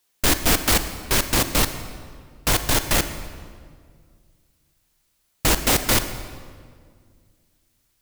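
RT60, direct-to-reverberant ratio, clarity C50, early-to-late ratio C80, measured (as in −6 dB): 2.0 s, 9.5 dB, 10.5 dB, 11.5 dB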